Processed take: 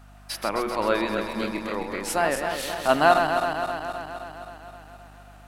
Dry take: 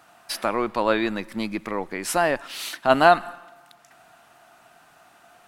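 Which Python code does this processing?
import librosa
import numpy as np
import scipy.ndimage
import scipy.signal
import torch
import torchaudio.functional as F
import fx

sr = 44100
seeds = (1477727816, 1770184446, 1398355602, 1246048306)

y = fx.reverse_delay_fb(x, sr, ms=131, feedback_pct=79, wet_db=-6)
y = fx.hum_notches(y, sr, base_hz=60, count=4)
y = fx.add_hum(y, sr, base_hz=50, snr_db=23)
y = y * 10.0 ** (-3.0 / 20.0)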